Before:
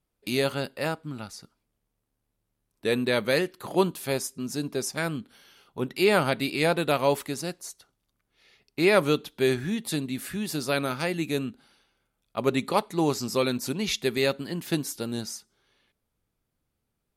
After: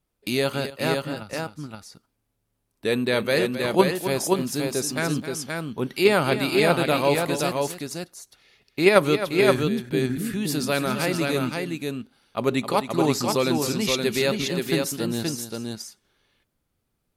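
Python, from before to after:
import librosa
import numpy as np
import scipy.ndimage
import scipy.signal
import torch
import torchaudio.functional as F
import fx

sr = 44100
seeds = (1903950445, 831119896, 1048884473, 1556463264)

p1 = fx.level_steps(x, sr, step_db=18)
p2 = x + (p1 * librosa.db_to_amplitude(-0.5))
p3 = fx.dmg_crackle(p2, sr, seeds[0], per_s=64.0, level_db=-36.0, at=(3.91, 4.73), fade=0.02)
p4 = fx.steep_lowpass(p3, sr, hz=530.0, slope=36, at=(9.62, 10.15), fade=0.02)
p5 = fx.echo_multitap(p4, sr, ms=(264, 524), db=(-11.5, -4.0))
y = fx.band_widen(p5, sr, depth_pct=70, at=(0.7, 1.33))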